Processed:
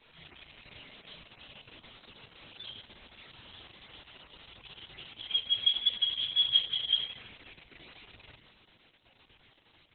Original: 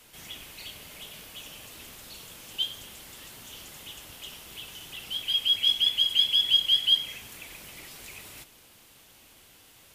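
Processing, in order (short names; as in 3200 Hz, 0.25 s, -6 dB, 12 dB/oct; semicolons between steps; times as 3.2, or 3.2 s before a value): median-filter separation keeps harmonic; dynamic EQ 6700 Hz, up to -3 dB, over -56 dBFS, Q 5.5; Opus 6 kbps 48000 Hz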